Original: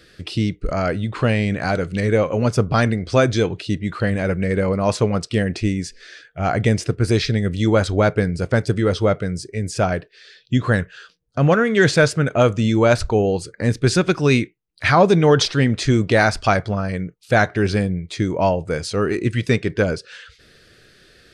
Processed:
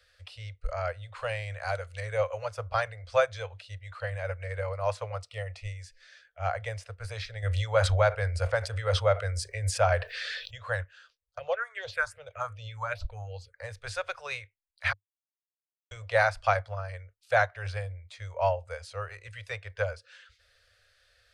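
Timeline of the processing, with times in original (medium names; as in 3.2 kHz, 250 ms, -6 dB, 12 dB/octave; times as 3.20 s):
1.16–2.45 s: treble shelf 6.7 kHz +10 dB
5.18–5.73 s: Butterworth band-stop 1.6 kHz, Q 5.7
7.42–10.58 s: level flattener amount 70%
11.39–13.56 s: phase shifter stages 4, 2.6 Hz, lowest notch 450–1800 Hz
14.93–15.91 s: mute
whole clip: Chebyshev band-stop 100–520 Hz, order 4; dynamic bell 6.2 kHz, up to -6 dB, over -41 dBFS, Q 0.81; upward expansion 1.5:1, over -29 dBFS; trim -5 dB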